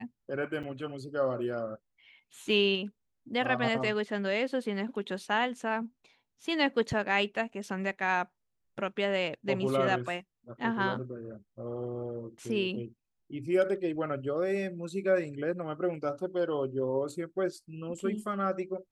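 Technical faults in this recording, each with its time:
0:00.63–0:00.64: drop-out 6.3 ms

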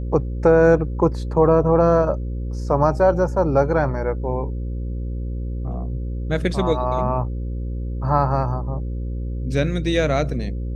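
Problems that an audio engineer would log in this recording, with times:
mains buzz 60 Hz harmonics 9 −26 dBFS

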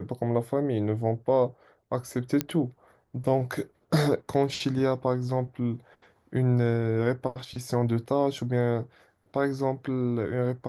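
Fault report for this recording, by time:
0:02.41: click −10 dBFS

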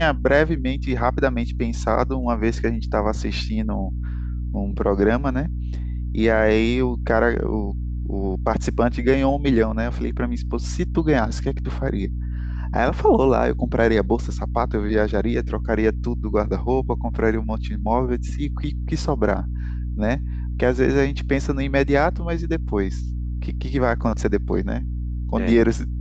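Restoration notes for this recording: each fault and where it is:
mains hum 60 Hz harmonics 5 −26 dBFS

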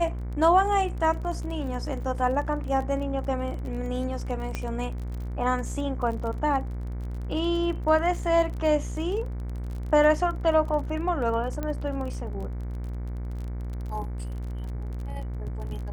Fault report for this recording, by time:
mains buzz 60 Hz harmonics 39 −32 dBFS
surface crackle 32 per second −34 dBFS
0:04.55: click −16 dBFS
0:11.63: click −18 dBFS

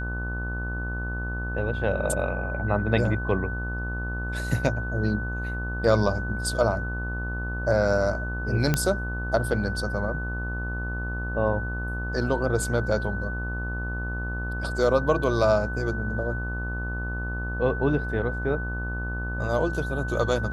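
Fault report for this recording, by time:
mains buzz 60 Hz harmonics 27 −31 dBFS
whistle 1,500 Hz −33 dBFS
0:08.74: click −8 dBFS

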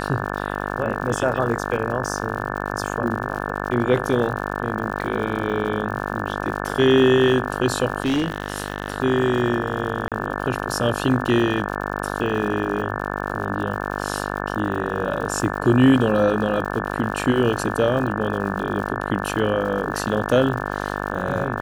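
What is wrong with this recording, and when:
mains buzz 50 Hz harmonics 35 −27 dBFS
surface crackle 110 per second −31 dBFS
0:08.02–0:08.98: clipping −17 dBFS
0:10.08–0:10.12: drop-out 37 ms

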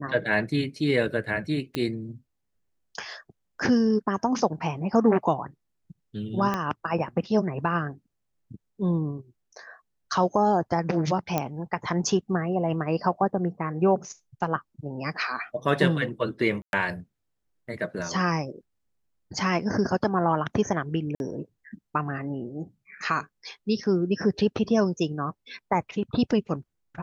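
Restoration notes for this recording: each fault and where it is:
0:01.75: click −14 dBFS
0:06.54: click −13 dBFS
0:11.38: click −11 dBFS
0:16.62–0:16.73: drop-out 111 ms
0:21.15–0:21.20: drop-out 51 ms

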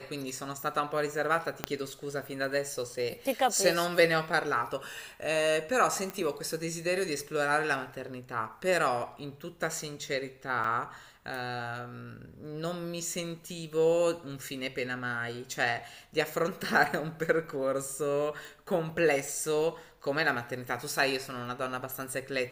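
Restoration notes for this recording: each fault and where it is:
0:01.64: click −12 dBFS
0:06.10: click −21 dBFS
0:10.64: drop-out 3.3 ms
0:18.45: click

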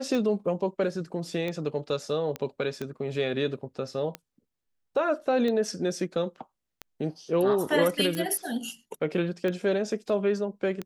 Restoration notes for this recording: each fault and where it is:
scratch tick 45 rpm −19 dBFS
0:02.36: click −18 dBFS

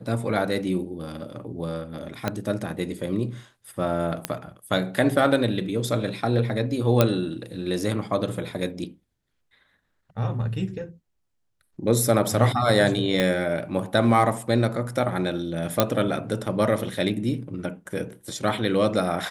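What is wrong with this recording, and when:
0:02.28: click −10 dBFS
0:04.25: click −8 dBFS
0:07.01: click −4 dBFS
0:13.20: click −9 dBFS
0:15.80: click −2 dBFS

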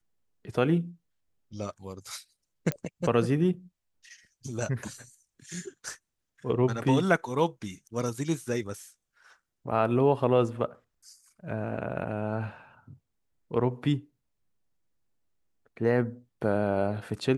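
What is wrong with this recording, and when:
0:02.72: click −14 dBFS

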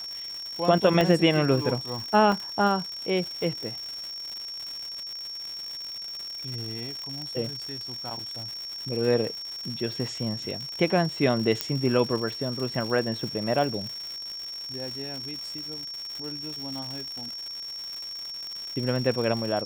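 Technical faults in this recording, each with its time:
surface crackle 220 per second −32 dBFS
whistle 5,500 Hz −34 dBFS
0:01.01: click −10 dBFS
0:02.32: drop-out 2 ms
0:11.61: click −8 dBFS

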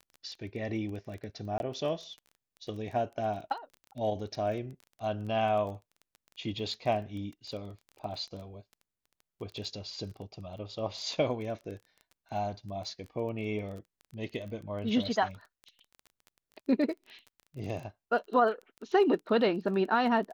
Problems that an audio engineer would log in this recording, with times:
surface crackle 16 per second −39 dBFS
0:01.58–0:01.60: drop-out 21 ms

